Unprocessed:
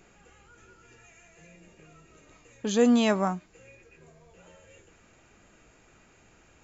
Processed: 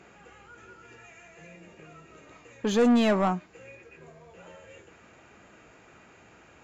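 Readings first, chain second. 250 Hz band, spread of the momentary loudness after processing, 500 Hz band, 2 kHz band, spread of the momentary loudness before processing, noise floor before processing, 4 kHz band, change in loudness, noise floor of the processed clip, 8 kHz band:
+0.5 dB, 13 LU, +0.5 dB, +1.0 dB, 16 LU, -60 dBFS, -1.0 dB, +0.5 dB, -55 dBFS, n/a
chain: HPF 57 Hz; low shelf 210 Hz +10.5 dB; overdrive pedal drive 20 dB, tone 1900 Hz, clips at -8 dBFS; gain -5.5 dB

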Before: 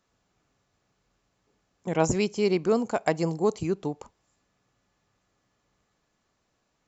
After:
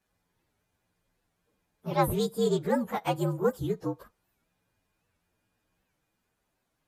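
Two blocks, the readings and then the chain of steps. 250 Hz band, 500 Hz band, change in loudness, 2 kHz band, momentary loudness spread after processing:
-3.0 dB, -3.0 dB, -2.5 dB, -4.5 dB, 9 LU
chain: inharmonic rescaling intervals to 118%; record warp 78 rpm, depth 160 cents

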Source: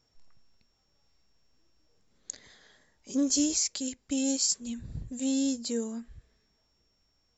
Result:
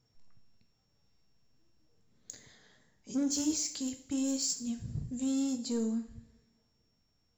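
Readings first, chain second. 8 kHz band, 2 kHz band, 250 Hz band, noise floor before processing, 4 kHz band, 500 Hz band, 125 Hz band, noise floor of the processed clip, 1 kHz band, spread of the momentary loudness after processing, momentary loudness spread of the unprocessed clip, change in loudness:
n/a, -5.5 dB, -2.5 dB, -73 dBFS, -6.0 dB, -4.0 dB, +2.5 dB, -75 dBFS, -0.5 dB, 19 LU, 17 LU, -4.0 dB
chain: bell 140 Hz +9.5 dB 1.8 oct; in parallel at -12 dB: wavefolder -27.5 dBFS; on the sum: two-slope reverb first 0.52 s, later 1.6 s, from -18 dB, DRR 6 dB; gain -7.5 dB

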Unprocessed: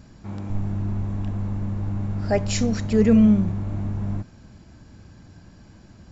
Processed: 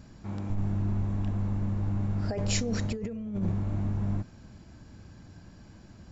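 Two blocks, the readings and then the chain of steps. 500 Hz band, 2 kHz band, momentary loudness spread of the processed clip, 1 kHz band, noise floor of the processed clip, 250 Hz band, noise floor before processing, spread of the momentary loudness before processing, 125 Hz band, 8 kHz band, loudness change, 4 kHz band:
-12.0 dB, -6.0 dB, 22 LU, -7.5 dB, -51 dBFS, -12.0 dB, -49 dBFS, 15 LU, -4.0 dB, n/a, -8.5 dB, -3.0 dB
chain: dynamic EQ 460 Hz, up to +6 dB, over -38 dBFS, Q 2.3; negative-ratio compressor -23 dBFS, ratio -1; gain -5.5 dB

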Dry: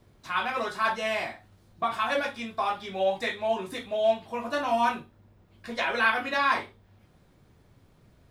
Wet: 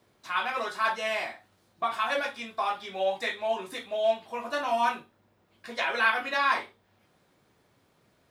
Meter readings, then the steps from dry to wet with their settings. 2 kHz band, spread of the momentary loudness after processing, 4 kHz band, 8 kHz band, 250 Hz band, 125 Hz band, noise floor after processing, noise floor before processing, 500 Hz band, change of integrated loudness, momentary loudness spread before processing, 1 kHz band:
-0.5 dB, 8 LU, 0.0 dB, 0.0 dB, -6.5 dB, n/a, -68 dBFS, -61 dBFS, -2.0 dB, -1.0 dB, 8 LU, -1.0 dB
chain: HPF 450 Hz 6 dB/oct

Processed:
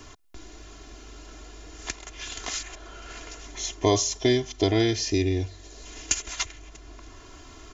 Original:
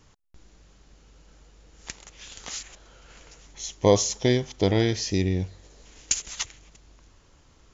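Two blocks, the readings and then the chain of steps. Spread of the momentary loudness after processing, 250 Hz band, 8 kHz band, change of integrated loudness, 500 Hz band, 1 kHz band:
23 LU, 0.0 dB, n/a, -1.0 dB, -1.5 dB, +0.5 dB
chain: comb 2.9 ms, depth 89%; three-band squash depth 40%

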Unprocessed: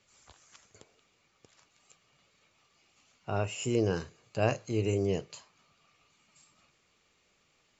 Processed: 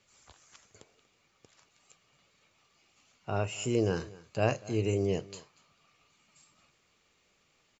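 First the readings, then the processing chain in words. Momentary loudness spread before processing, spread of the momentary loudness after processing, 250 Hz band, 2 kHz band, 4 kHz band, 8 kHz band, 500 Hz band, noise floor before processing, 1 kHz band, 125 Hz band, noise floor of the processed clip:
16 LU, 16 LU, 0.0 dB, 0.0 dB, 0.0 dB, n/a, 0.0 dB, -71 dBFS, 0.0 dB, 0.0 dB, -71 dBFS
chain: echo 0.237 s -21 dB

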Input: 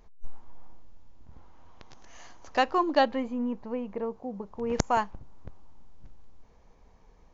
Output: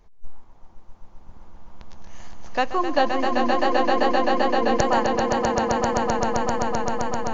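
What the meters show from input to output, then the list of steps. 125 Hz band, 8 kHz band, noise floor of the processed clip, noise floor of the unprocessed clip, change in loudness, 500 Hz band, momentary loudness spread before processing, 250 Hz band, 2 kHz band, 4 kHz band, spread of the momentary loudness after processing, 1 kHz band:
+9.0 dB, n/a, -45 dBFS, -58 dBFS, +7.0 dB, +9.5 dB, 11 LU, +7.5 dB, +9.5 dB, +9.0 dB, 5 LU, +9.5 dB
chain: swelling echo 0.13 s, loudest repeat 8, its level -4.5 dB; wow and flutter 26 cents; gain +1.5 dB

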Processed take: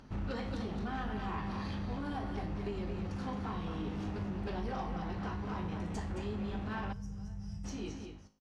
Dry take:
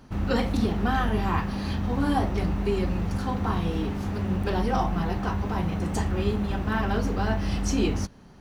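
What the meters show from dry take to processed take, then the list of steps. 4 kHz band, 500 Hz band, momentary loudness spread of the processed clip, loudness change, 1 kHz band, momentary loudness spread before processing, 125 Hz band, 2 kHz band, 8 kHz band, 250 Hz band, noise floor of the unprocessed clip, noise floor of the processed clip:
-12.5 dB, -12.5 dB, 5 LU, -12.0 dB, -12.0 dB, 4 LU, -12.0 dB, -12.0 dB, -16.0 dB, -11.5 dB, -49 dBFS, -46 dBFS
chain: ending faded out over 2.11 s; LPF 6500 Hz 12 dB/oct; on a send: echo 0.219 s -7.5 dB; on the sum: compressor, threshold -27 dBFS, peak gain reduction 9 dB; soft clip -25.5 dBFS, distortion -17 dB; resonator 52 Hz, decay 0.46 s, harmonics all, mix 70%; spectral gain 6.93–7.65, 200–4900 Hz -20 dB; upward compressor, threshold -58 dBFS; gain +1 dB

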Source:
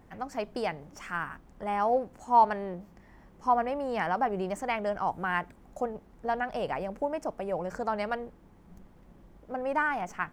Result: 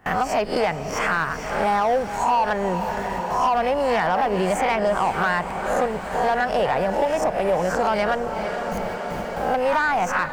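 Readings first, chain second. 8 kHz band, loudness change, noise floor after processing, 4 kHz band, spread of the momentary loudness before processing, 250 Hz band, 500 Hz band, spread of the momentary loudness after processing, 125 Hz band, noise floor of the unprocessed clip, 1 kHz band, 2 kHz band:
+16.0 dB, +8.5 dB, -30 dBFS, +13.5 dB, 11 LU, +8.5 dB, +10.5 dB, 6 LU, +11.5 dB, -57 dBFS, +8.0 dB, +10.5 dB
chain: spectral swells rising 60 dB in 0.36 s; gate with hold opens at -43 dBFS; bell 280 Hz -6 dB 0.95 oct; in parallel at +2 dB: compressor, threshold -44 dBFS, peak gain reduction 25.5 dB; on the sum: limiter -19 dBFS, peak gain reduction 9 dB; sample leveller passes 1; on a send: diffused feedback echo 0.452 s, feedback 62%, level -12 dB; on the sum: three-band squash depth 70%; gain +6 dB

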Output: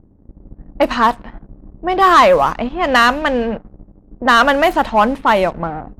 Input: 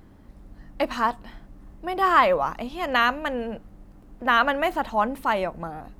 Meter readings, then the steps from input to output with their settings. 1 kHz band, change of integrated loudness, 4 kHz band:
+9.5 dB, +9.5 dB, +10.0 dB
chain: sample leveller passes 2; low-pass opened by the level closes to 450 Hz, open at -13.5 dBFS; gain +4 dB

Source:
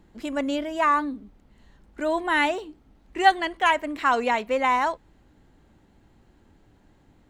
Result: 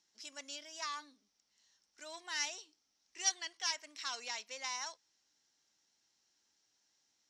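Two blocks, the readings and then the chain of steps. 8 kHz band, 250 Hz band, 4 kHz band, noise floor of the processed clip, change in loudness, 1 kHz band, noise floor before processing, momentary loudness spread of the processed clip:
+7.0 dB, -33.0 dB, -6.0 dB, -80 dBFS, -15.5 dB, -24.5 dB, -59 dBFS, 15 LU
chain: in parallel at -11 dB: sine folder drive 9 dB, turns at -6.5 dBFS; on the sum: band-pass 5600 Hz, Q 8.7; gain +5 dB

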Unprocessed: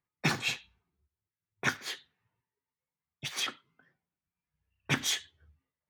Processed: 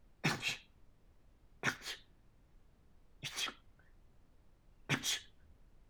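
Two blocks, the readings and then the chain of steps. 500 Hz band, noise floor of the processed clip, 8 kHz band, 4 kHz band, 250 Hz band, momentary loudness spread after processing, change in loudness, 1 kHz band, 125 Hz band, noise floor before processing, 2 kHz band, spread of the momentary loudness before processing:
-6.0 dB, -68 dBFS, -6.0 dB, -6.0 dB, -6.0 dB, 12 LU, -6.0 dB, -6.0 dB, -6.0 dB, under -85 dBFS, -6.0 dB, 12 LU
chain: added noise brown -57 dBFS; gain -6 dB

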